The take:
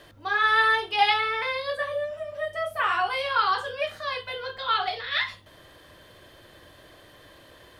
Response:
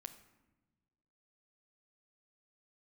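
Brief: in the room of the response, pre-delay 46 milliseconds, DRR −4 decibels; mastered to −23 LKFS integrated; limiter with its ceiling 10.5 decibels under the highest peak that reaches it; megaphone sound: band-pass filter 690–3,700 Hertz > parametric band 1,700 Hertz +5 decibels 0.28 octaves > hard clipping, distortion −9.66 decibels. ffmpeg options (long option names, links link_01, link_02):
-filter_complex "[0:a]alimiter=limit=-18.5dB:level=0:latency=1,asplit=2[link_01][link_02];[1:a]atrim=start_sample=2205,adelay=46[link_03];[link_02][link_03]afir=irnorm=-1:irlink=0,volume=9.5dB[link_04];[link_01][link_04]amix=inputs=2:normalize=0,highpass=690,lowpass=3700,equalizer=frequency=1700:width_type=o:width=0.28:gain=5,asoftclip=type=hard:threshold=-20.5dB,volume=1.5dB"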